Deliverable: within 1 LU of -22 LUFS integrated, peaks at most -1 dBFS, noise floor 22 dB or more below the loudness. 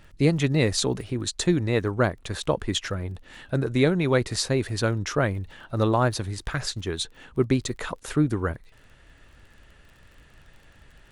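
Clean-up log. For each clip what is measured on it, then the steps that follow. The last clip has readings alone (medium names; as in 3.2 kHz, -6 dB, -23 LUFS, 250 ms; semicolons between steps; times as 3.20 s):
tick rate 30 per s; loudness -25.5 LUFS; peak level -8.0 dBFS; loudness target -22.0 LUFS
-> de-click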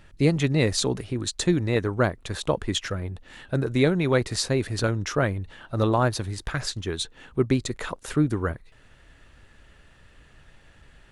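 tick rate 0.090 per s; loudness -25.5 LUFS; peak level -8.0 dBFS; loudness target -22.0 LUFS
-> trim +3.5 dB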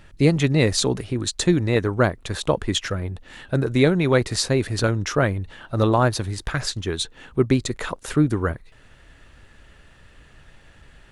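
loudness -22.0 LUFS; peak level -4.5 dBFS; noise floor -51 dBFS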